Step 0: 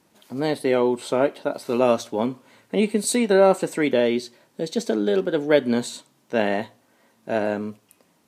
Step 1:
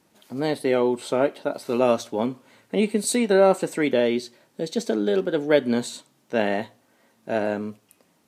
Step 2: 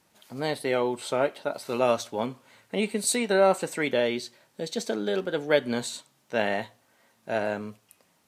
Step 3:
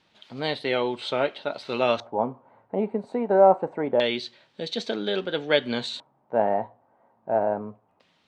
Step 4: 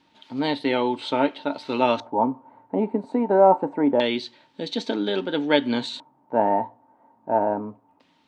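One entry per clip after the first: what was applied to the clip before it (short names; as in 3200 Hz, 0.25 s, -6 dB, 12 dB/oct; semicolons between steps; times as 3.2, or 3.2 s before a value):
notch 1000 Hz, Q 22; gain -1 dB
bell 290 Hz -8 dB 1.7 oct
LFO low-pass square 0.25 Hz 850–3600 Hz
small resonant body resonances 280/900 Hz, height 14 dB, ringing for 70 ms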